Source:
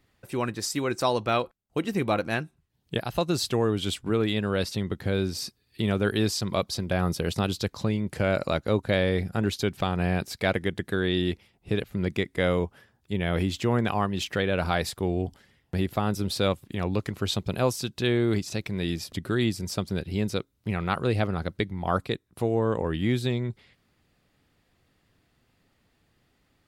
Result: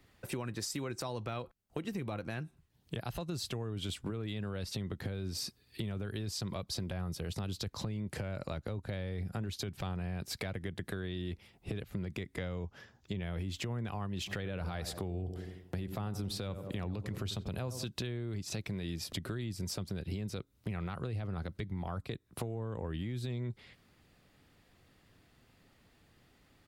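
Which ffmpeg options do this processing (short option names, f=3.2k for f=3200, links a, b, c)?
-filter_complex "[0:a]asettb=1/sr,asplit=3[a][b][c];[a]atrim=end=12.374[d];[b]atrim=start=12.37:end=13.23,asetpts=PTS-STARTPTS,afade=t=in:d=0.004:c=qsin,afade=t=out:st=0.856:d=0.004:c=qsin,highshelf=f=7.7k:t=q:w=3:g=-6.5[e];[c]atrim=start=13.226[f];[d][e]acrossfade=d=0.004:c1=hsin:c2=qsin[g];[g][f]acrossfade=d=0.004:c1=qsin:c2=hsin,asplit=3[h][i][j];[h]afade=t=out:st=14.26:d=0.02[k];[i]asplit=2[l][m];[m]adelay=89,lowpass=f=960:p=1,volume=-12.5dB,asplit=2[n][o];[o]adelay=89,lowpass=f=960:p=1,volume=0.54,asplit=2[p][q];[q]adelay=89,lowpass=f=960:p=1,volume=0.54,asplit=2[r][s];[s]adelay=89,lowpass=f=960:p=1,volume=0.54,asplit=2[t][u];[u]adelay=89,lowpass=f=960:p=1,volume=0.54,asplit=2[v][w];[w]adelay=89,lowpass=f=960:p=1,volume=0.54[x];[l][n][p][r][t][v][x]amix=inputs=7:normalize=0,afade=t=in:st=14.26:d=0.02,afade=t=out:st=17.84:d=0.02[y];[j]afade=t=in:st=17.84:d=0.02[z];[k][y][z]amix=inputs=3:normalize=0,acrossover=split=150[aa][ab];[ab]acompressor=threshold=-32dB:ratio=6[ac];[aa][ac]amix=inputs=2:normalize=0,alimiter=level_in=0.5dB:limit=-24dB:level=0:latency=1:release=13,volume=-0.5dB,acompressor=threshold=-37dB:ratio=6,volume=2.5dB"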